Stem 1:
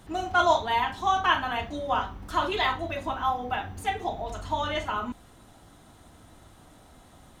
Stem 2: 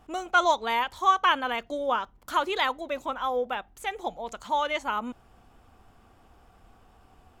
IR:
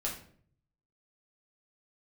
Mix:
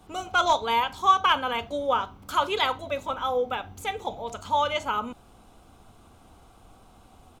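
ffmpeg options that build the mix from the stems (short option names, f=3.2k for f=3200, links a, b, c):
-filter_complex "[0:a]highpass=f=76:w=0.5412,highpass=f=76:w=1.3066,aeval=exprs='clip(val(0),-1,0.158)':c=same,volume=-5dB[a];[1:a]adelay=6,volume=2dB[b];[a][b]amix=inputs=2:normalize=0,equalizer=f=1.8k:w=6.8:g=-12"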